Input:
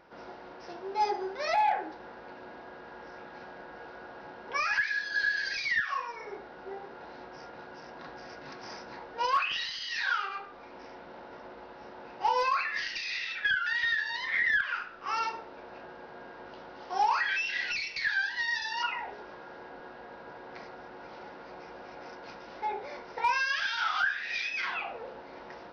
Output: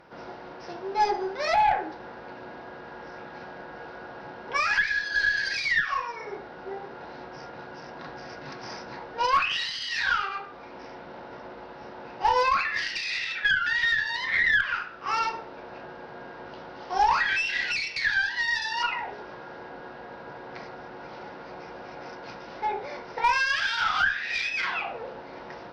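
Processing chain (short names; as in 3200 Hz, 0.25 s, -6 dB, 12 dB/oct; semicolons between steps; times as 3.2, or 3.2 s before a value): bell 130 Hz +6 dB 0.77 oct; tube stage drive 14 dB, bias 0.55; gain +7 dB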